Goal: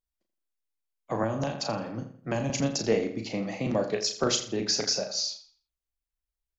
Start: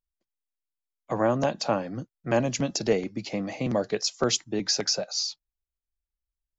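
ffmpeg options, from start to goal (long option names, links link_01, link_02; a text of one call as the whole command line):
ffmpeg -i in.wav -filter_complex "[0:a]asplit=2[link_01][link_02];[link_02]adelay=36,volume=-6dB[link_03];[link_01][link_03]amix=inputs=2:normalize=0,asplit=2[link_04][link_05];[link_05]adelay=83,lowpass=frequency=4800:poles=1,volume=-11dB,asplit=2[link_06][link_07];[link_07]adelay=83,lowpass=frequency=4800:poles=1,volume=0.39,asplit=2[link_08][link_09];[link_09]adelay=83,lowpass=frequency=4800:poles=1,volume=0.39,asplit=2[link_10][link_11];[link_11]adelay=83,lowpass=frequency=4800:poles=1,volume=0.39[link_12];[link_06][link_08][link_10][link_12]amix=inputs=4:normalize=0[link_13];[link_04][link_13]amix=inputs=2:normalize=0,asettb=1/sr,asplit=3[link_14][link_15][link_16];[link_14]atrim=end=1.234[link_17];[link_15]atrim=start=1.23:end=2.5,asetpts=PTS-STARTPTS,afade=type=in:duration=0.004:curve=qsin,afade=type=out:start_time=1.266:duration=0.004:curve=qsin,acrossover=split=190|3000[link_18][link_19][link_20];[link_19]acompressor=threshold=-26dB:ratio=6[link_21];[link_18][link_21][link_20]amix=inputs=3:normalize=0[link_22];[link_16]atrim=start=2.496[link_23];[link_17][link_22]acrossfade=duration=0.004:curve1=hsin:curve2=qsin[link_24];[link_24][link_23]acrossfade=duration=0.004:curve1=qsin:curve2=hsin,volume=-2dB" out.wav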